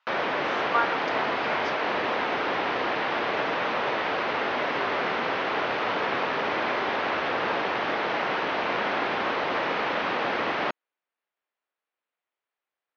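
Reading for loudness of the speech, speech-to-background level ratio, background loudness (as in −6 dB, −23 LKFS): −31.5 LKFS, −5.0 dB, −26.5 LKFS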